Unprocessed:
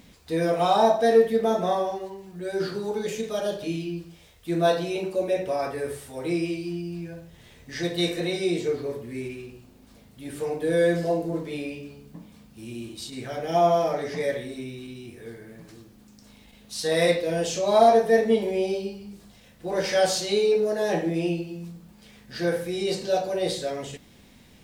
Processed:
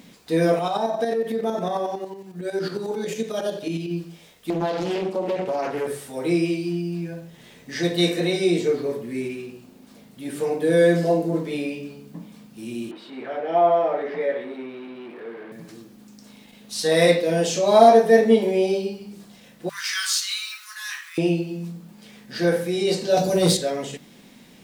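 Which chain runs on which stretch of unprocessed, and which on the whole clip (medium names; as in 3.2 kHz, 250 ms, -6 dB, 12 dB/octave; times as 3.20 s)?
0.59–3.91 s: compression, threshold -22 dBFS + tremolo saw up 11 Hz, depth 60%
4.50–5.87 s: treble shelf 7.1 kHz -10 dB + compression, threshold -25 dBFS + loudspeaker Doppler distortion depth 0.73 ms
12.91–15.52 s: jump at every zero crossing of -37.5 dBFS + high-pass 380 Hz + distance through air 490 m
19.69–21.18 s: companding laws mixed up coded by A + steep high-pass 1.1 kHz 72 dB/octave + treble shelf 5.8 kHz +4.5 dB
23.17–23.57 s: tone controls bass +15 dB, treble +11 dB + hard clipper -17.5 dBFS
whole clip: resonant low shelf 120 Hz -11.5 dB, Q 1.5; hum notches 50/100/150/200 Hz; trim +4 dB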